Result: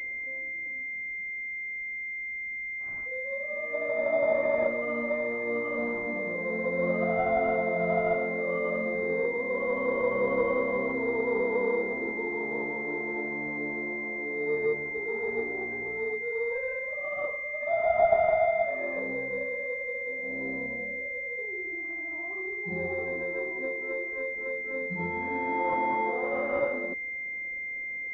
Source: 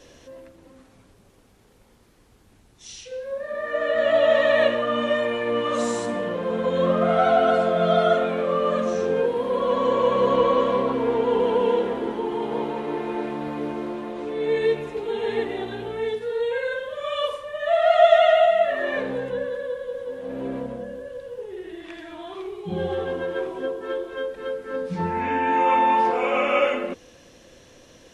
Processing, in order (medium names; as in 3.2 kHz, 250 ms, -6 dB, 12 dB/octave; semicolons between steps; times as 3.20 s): peaking EQ 110 Hz -6.5 dB 0.6 oct; class-D stage that switches slowly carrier 2.1 kHz; trim -6.5 dB